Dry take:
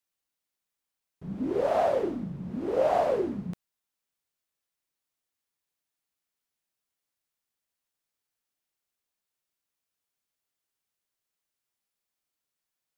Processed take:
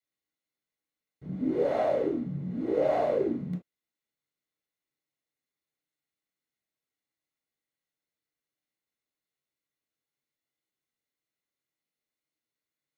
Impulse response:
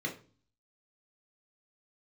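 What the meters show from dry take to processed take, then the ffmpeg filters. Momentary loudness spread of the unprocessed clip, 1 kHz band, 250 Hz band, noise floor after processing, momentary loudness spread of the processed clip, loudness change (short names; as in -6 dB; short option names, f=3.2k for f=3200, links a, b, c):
16 LU, -4.5 dB, +2.0 dB, under -85 dBFS, 12 LU, -1.0 dB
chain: -filter_complex "[1:a]atrim=start_sample=2205,afade=t=out:st=0.13:d=0.01,atrim=end_sample=6174[a];[0:a][a]afir=irnorm=-1:irlink=0,volume=-6dB"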